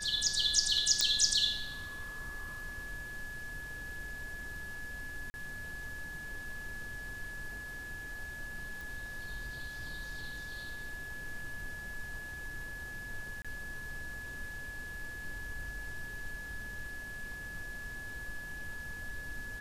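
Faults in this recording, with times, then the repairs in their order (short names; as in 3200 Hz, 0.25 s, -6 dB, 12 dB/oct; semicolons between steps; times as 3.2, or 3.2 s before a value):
tone 1700 Hz -42 dBFS
1.01 pop -12 dBFS
5.3–5.34 gap 40 ms
8.81 pop
13.42–13.45 gap 26 ms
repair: de-click; notch 1700 Hz, Q 30; interpolate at 5.3, 40 ms; interpolate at 13.42, 26 ms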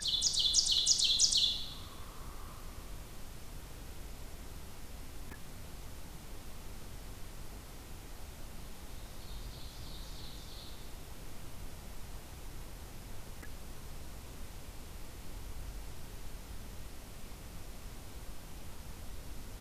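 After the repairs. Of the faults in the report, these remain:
none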